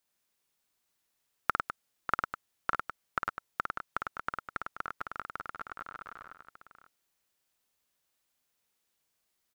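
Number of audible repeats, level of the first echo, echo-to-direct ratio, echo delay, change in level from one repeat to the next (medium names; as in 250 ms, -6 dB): 4, -5.0 dB, -0.5 dB, 54 ms, no regular repeats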